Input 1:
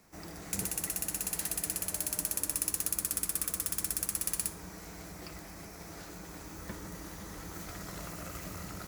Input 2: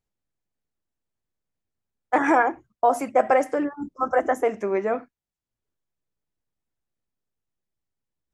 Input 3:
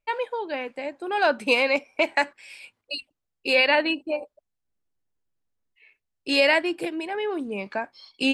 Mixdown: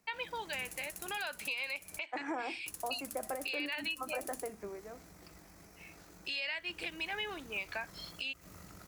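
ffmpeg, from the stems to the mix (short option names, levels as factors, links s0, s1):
-filter_complex "[0:a]tremolo=f=48:d=0.333,volume=0.355,asplit=3[s0][s1][s2];[s0]atrim=end=1.99,asetpts=PTS-STARTPTS,afade=t=out:st=1.986:d=0.004:c=hsin[s3];[s1]atrim=start=1.99:end=2.66,asetpts=PTS-STARTPTS,volume=0[s4];[s2]atrim=start=2.66,asetpts=PTS-STARTPTS,afade=t=in:d=0.004:c=hsin[s5];[s3][s4][s5]concat=n=3:v=0:a=1[s6];[1:a]acrossover=split=350|3000[s7][s8][s9];[s8]acompressor=threshold=0.0891:ratio=6[s10];[s7][s10][s9]amix=inputs=3:normalize=0,volume=0.224,afade=t=out:st=4.55:d=0.22:silence=0.281838[s11];[2:a]bandpass=f=3100:t=q:w=1.1:csg=0,volume=1.33[s12];[s6][s12]amix=inputs=2:normalize=0,acompressor=threshold=0.0282:ratio=12,volume=1[s13];[s11][s13]amix=inputs=2:normalize=0,alimiter=level_in=1.41:limit=0.0631:level=0:latency=1:release=225,volume=0.708"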